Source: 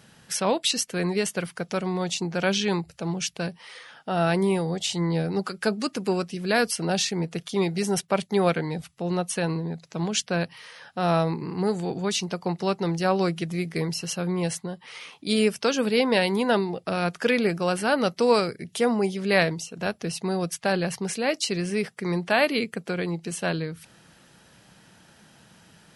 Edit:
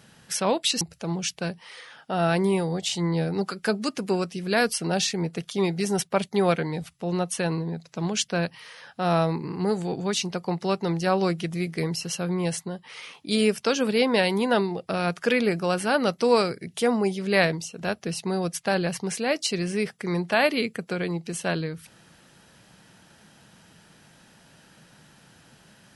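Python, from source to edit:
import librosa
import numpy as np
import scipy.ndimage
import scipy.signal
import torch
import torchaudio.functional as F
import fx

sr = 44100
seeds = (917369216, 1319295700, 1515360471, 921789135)

y = fx.edit(x, sr, fx.cut(start_s=0.81, length_s=1.98), tone=tone)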